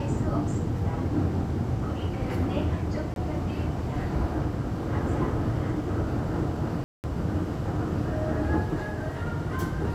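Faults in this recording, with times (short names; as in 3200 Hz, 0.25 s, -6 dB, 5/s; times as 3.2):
3.14–3.16 gap 22 ms
6.84–7.04 gap 0.199 s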